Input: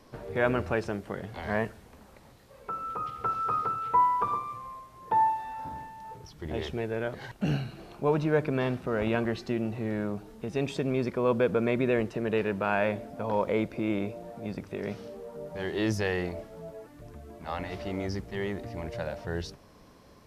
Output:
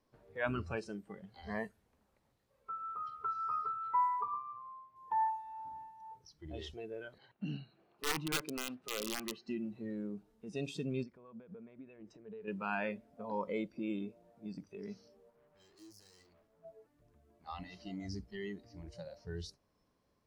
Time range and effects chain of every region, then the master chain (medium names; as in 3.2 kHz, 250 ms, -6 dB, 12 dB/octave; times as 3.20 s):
4.21–4.96 s: high-pass 91 Hz + distance through air 170 m
7.18–9.48 s: high-pass 100 Hz + tone controls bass -5 dB, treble -14 dB + integer overflow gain 20 dB
11.03–12.48 s: treble shelf 2.7 kHz -6 dB + compression 5:1, threshold -34 dBFS
15.30–16.65 s: hum notches 60/120/180/240/300/360/420/480 Hz + valve stage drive 44 dB, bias 0.65
whole clip: spectral noise reduction 16 dB; dynamic bell 540 Hz, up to -4 dB, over -39 dBFS, Q 0.74; trim -6 dB